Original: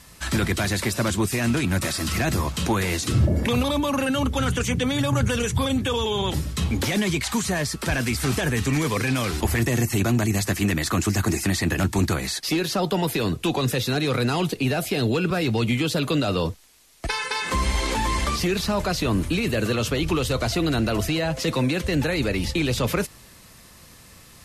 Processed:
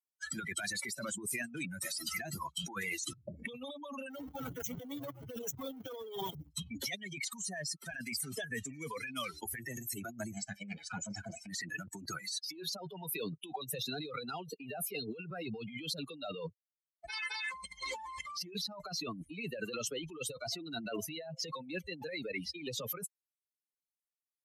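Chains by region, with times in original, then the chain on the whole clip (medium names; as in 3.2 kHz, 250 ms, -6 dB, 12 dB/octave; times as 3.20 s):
4.10–6.51 s: square wave that keeps the level + AM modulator 220 Hz, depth 60%
10.34–11.47 s: comb filter that takes the minimum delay 1.3 ms + distance through air 54 m + flutter echo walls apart 6 m, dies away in 0.21 s
whole clip: expander on every frequency bin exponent 3; compressor with a negative ratio -40 dBFS, ratio -1; high-pass 170 Hz 12 dB/octave; trim -1 dB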